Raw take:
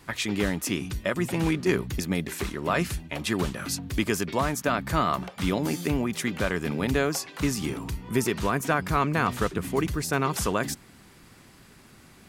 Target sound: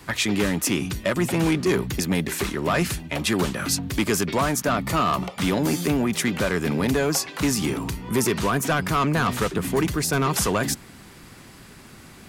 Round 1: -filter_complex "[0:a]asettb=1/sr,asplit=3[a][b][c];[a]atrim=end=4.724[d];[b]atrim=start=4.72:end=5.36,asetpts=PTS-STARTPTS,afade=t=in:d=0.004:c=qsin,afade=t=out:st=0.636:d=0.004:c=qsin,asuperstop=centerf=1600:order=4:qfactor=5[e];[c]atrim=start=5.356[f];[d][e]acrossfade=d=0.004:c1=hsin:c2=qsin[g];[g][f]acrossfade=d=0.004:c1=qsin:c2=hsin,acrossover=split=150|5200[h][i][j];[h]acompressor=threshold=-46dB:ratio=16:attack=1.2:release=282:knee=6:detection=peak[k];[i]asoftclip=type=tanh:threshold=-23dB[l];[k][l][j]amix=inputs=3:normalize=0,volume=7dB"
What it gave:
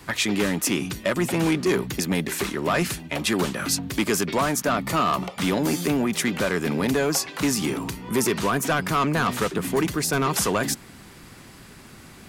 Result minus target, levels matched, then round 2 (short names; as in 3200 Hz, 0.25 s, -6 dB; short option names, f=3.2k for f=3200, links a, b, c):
compressor: peak gain reduction +10 dB
-filter_complex "[0:a]asettb=1/sr,asplit=3[a][b][c];[a]atrim=end=4.724[d];[b]atrim=start=4.72:end=5.36,asetpts=PTS-STARTPTS,afade=t=in:d=0.004:c=qsin,afade=t=out:st=0.636:d=0.004:c=qsin,asuperstop=centerf=1600:order=4:qfactor=5[e];[c]atrim=start=5.356[f];[d][e]acrossfade=d=0.004:c1=hsin:c2=qsin[g];[g][f]acrossfade=d=0.004:c1=qsin:c2=hsin,acrossover=split=150|5200[h][i][j];[h]acompressor=threshold=-35.5dB:ratio=16:attack=1.2:release=282:knee=6:detection=peak[k];[i]asoftclip=type=tanh:threshold=-23dB[l];[k][l][j]amix=inputs=3:normalize=0,volume=7dB"